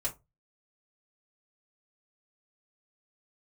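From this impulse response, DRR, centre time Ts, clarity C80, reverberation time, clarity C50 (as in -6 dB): -5.5 dB, 11 ms, 25.0 dB, 0.20 s, 16.5 dB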